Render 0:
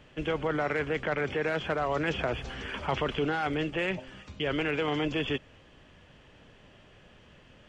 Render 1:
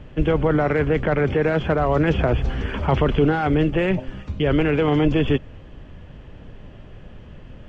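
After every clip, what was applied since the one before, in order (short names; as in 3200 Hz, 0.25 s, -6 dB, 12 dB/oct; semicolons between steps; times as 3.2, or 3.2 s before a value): tilt -3 dB/oct; gain +7 dB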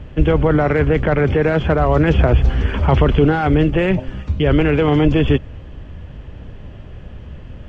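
bell 68 Hz +7 dB 1.3 oct; gain +3.5 dB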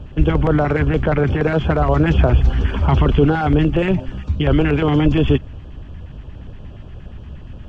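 LFO notch square 8.5 Hz 510–2000 Hz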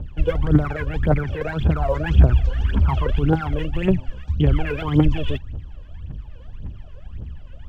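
phaser 1.8 Hz, delay 2.1 ms, feedback 80%; gain -10 dB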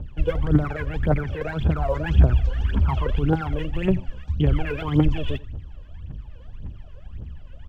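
echo 87 ms -21 dB; gain -2.5 dB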